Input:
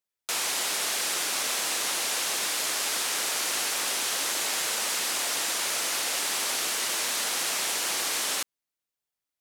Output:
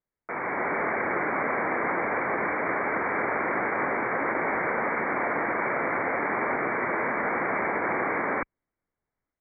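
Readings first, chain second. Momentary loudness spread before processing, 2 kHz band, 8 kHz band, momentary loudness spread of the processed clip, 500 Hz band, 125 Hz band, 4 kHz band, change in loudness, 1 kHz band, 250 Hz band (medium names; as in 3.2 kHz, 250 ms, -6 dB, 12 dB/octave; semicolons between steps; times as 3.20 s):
0 LU, +5.0 dB, under -40 dB, 1 LU, +11.0 dB, no reading, under -40 dB, -1.0 dB, +8.5 dB, +13.5 dB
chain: Chebyshev low-pass 2.3 kHz, order 10; tilt EQ -2.5 dB/octave; level rider gain up to 6 dB; trim +3 dB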